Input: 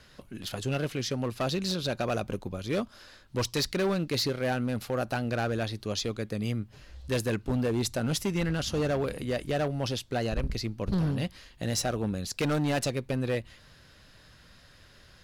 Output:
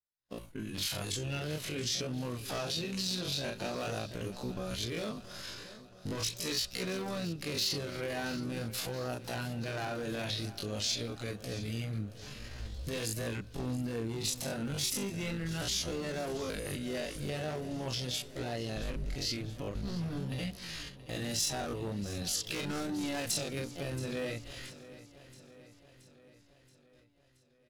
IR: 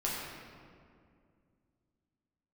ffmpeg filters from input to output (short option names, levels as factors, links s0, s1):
-filter_complex "[0:a]asplit=3[s0][s1][s2];[s1]asetrate=29433,aresample=44100,atempo=1.49831,volume=0.251[s3];[s2]asetrate=55563,aresample=44100,atempo=0.793701,volume=0.2[s4];[s0][s3][s4]amix=inputs=3:normalize=0,agate=range=0.00141:threshold=0.00355:ratio=16:detection=peak,acompressor=threshold=0.0112:ratio=2,flanger=delay=16:depth=5.2:speed=0.8,alimiter=level_in=4.73:limit=0.0631:level=0:latency=1:release=80,volume=0.211,highshelf=f=2600:g=5.5,atempo=0.55,asplit=2[s5][s6];[s6]aecho=0:1:676|1352|2028|2704|3380|4056:0.158|0.0951|0.0571|0.0342|0.0205|0.0123[s7];[s5][s7]amix=inputs=2:normalize=0,adynamicequalizer=threshold=0.002:dfrequency=2000:dqfactor=0.7:tfrequency=2000:tqfactor=0.7:attack=5:release=100:ratio=0.375:range=1.5:mode=boostabove:tftype=highshelf,volume=2.51"